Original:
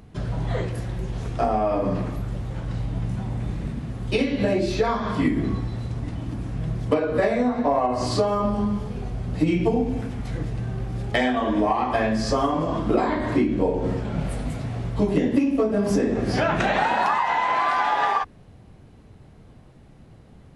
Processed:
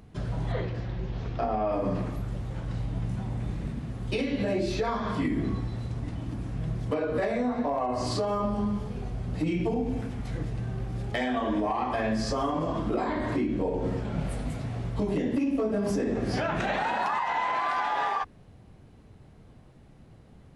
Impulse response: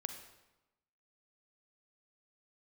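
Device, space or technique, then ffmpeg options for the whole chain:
clipper into limiter: -filter_complex "[0:a]asettb=1/sr,asplit=3[s0][s1][s2];[s0]atrim=end=0.524[s3];[s1]atrim=start=0.52:end=1.72,asetpts=PTS-STARTPTS,afade=t=in:d=0.004:c=qsin,afade=t=out:st=1.196:d=0.004:c=qsin,lowpass=f=5100:w=0.5412,lowpass=f=5100:w=1.3066[s4];[s2]atrim=start=1.716[s5];[s3][s4]acrossfade=d=0.004:c1=hsin:c2=qsin[s6];[s6][s5]acrossfade=d=0.004:c1=qsin:c2=hsin,asoftclip=type=hard:threshold=0.282,alimiter=limit=0.168:level=0:latency=1:release=45,volume=0.631"

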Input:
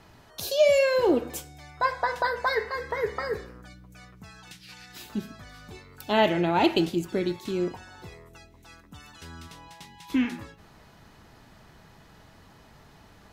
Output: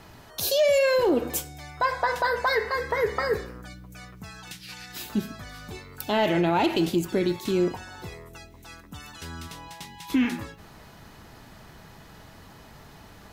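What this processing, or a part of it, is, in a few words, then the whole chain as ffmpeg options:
soft clipper into limiter: -af "highshelf=f=12000:g=8,asoftclip=type=tanh:threshold=0.237,alimiter=limit=0.1:level=0:latency=1:release=80,volume=1.78"

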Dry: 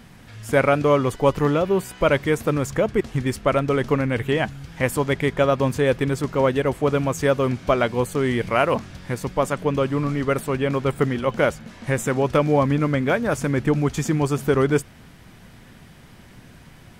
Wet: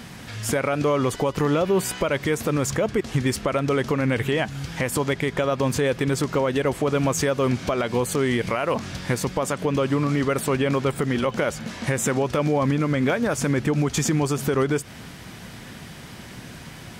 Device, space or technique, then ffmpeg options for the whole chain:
broadcast voice chain: -af "highpass=f=88:p=1,deesser=0.5,acompressor=threshold=0.1:ratio=4,equalizer=f=5600:t=o:w=1.8:g=4,alimiter=limit=0.0944:level=0:latency=1:release=143,volume=2.37"

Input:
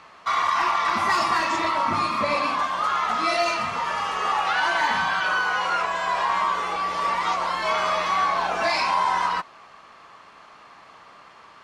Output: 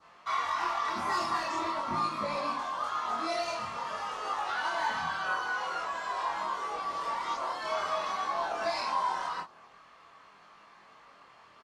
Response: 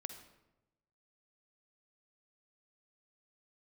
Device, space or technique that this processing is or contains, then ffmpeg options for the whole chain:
double-tracked vocal: -filter_complex "[0:a]adynamicequalizer=threshold=0.00891:dfrequency=2300:dqfactor=1.6:tfrequency=2300:tqfactor=1.6:attack=5:release=100:ratio=0.375:range=3:mode=cutabove:tftype=bell,asplit=2[s0][s1];[s1]adelay=25,volume=0.596[s2];[s0][s2]amix=inputs=2:normalize=0,flanger=delay=19:depth=5.9:speed=0.47,volume=0.473"

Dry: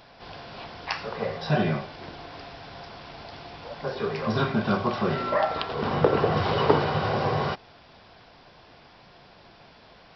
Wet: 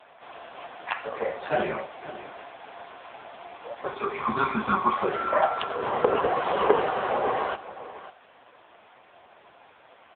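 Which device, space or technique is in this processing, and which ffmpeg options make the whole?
satellite phone: -filter_complex "[0:a]asettb=1/sr,asplit=3[s0][s1][s2];[s0]atrim=end=3.874[s3];[s1]atrim=start=3.87:end=4.97,asetpts=PTS-STARTPTS,afade=t=in:d=0.004:c=qsin,afade=t=out:st=1.096:d=0.004:c=qsin,aecho=1:1:0.9:0.82,atrim=end_sample=48510[s4];[s2]atrim=start=4.966[s5];[s3][s4]acrossfade=d=0.004:c1=hsin:c2=qsin[s6];[s6][s5]acrossfade=d=0.004:c1=qsin:c2=hsin,highpass=400,lowpass=3200,aecho=1:1:551:0.188,volume=1.68" -ar 8000 -c:a libopencore_amrnb -b:a 5900

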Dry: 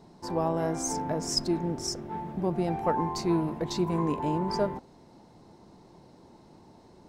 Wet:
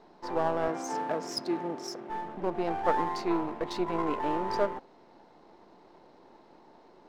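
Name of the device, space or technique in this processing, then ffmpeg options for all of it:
crystal radio: -filter_complex "[0:a]highpass=360,lowpass=3400,aeval=exprs='if(lt(val(0),0),0.447*val(0),val(0))':c=same,asettb=1/sr,asplit=3[s0][s1][s2];[s0]atrim=end=0.684[s3];[s1]atrim=start=0.68:end=2.1,asetpts=PTS-STARTPTS,afade=t=in:d=0.004:c=qsin,afade=t=out:st=1.416:d=0.004:c=qsin,highpass=f=120:w=0.5412,highpass=f=120:w=1.3066[s4];[s2]atrim=start=2.096[s5];[s3][s4]acrossfade=d=0.004:c1=hsin:c2=qsin[s6];[s6][s5]acrossfade=d=0.004:c1=qsin:c2=hsin,volume=1.58"

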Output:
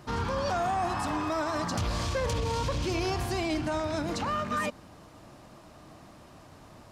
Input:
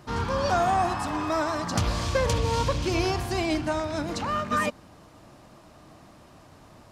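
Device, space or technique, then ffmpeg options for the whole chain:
soft clipper into limiter: -af "asoftclip=type=tanh:threshold=0.178,alimiter=limit=0.075:level=0:latency=1:release=38"

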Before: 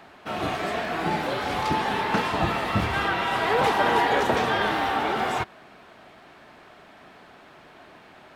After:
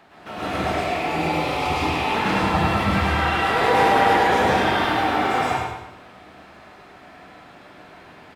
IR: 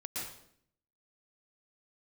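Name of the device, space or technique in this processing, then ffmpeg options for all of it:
bathroom: -filter_complex "[1:a]atrim=start_sample=2205[s0];[0:a][s0]afir=irnorm=-1:irlink=0,asettb=1/sr,asplit=3[s1][s2][s3];[s1]atrim=end=0.794[s4];[s2]atrim=start=0.79:end=2.16,asetpts=PTS-STARTPTS,afade=t=in:d=0.004:c=qsin,afade=t=out:st=1.366:d=0.004:c=qsin,equalizer=f=200:t=o:w=0.33:g=-9,equalizer=f=1600:t=o:w=0.33:g=-11,equalizer=f=2500:t=o:w=0.33:g=6[s5];[s3]atrim=start=2.156[s6];[s4][s5]acrossfade=d=0.004:c1=hsin:c2=qsin[s7];[s7][s6]acrossfade=d=0.004:c1=qsin:c2=hsin,aecho=1:1:104|208|312|416|520:0.562|0.219|0.0855|0.0334|0.013,volume=1.19"

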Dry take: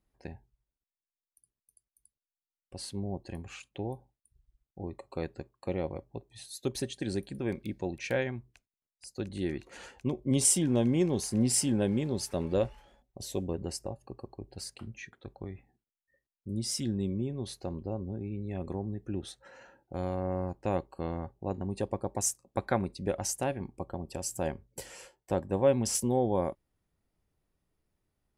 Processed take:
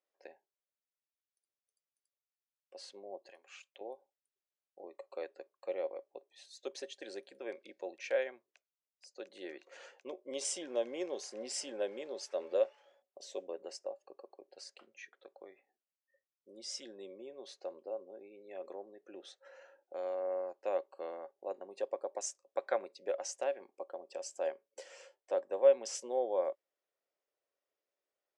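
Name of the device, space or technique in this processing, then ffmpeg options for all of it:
phone speaker on a table: -filter_complex "[0:a]highpass=f=430:w=0.5412,highpass=f=430:w=1.3066,equalizer=f=560:t=q:w=4:g=7,equalizer=f=890:t=q:w=4:g=-4,equalizer=f=4200:t=q:w=4:g=-3,lowpass=f=6700:w=0.5412,lowpass=f=6700:w=1.3066,asettb=1/sr,asplit=3[s0][s1][s2];[s0]atrim=end=3.294[s3];[s1]atrim=start=3.29:end=3.81,asetpts=PTS-STARTPTS,afade=t=in:d=0.004:c=qsin,afade=t=out:st=0.516:d=0.004:c=qsin,highpass=f=1300:p=1[s4];[s2]atrim=start=3.806[s5];[s3][s4]acrossfade=d=0.004:c1=hsin:c2=qsin[s6];[s6][s5]acrossfade=d=0.004:c1=qsin:c2=hsin,volume=0.531"

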